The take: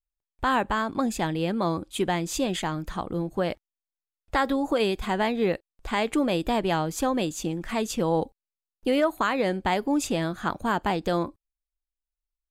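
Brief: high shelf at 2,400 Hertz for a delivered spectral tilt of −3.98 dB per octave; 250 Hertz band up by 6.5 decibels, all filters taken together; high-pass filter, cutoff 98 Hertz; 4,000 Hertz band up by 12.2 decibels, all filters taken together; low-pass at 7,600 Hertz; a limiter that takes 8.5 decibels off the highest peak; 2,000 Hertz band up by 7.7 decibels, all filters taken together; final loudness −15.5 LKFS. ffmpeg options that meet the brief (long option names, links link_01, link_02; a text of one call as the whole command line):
ffmpeg -i in.wav -af "highpass=98,lowpass=7600,equalizer=frequency=250:width_type=o:gain=8,equalizer=frequency=2000:width_type=o:gain=4,highshelf=frequency=2400:gain=8,equalizer=frequency=4000:width_type=o:gain=7.5,volume=8.5dB,alimiter=limit=-5dB:level=0:latency=1" out.wav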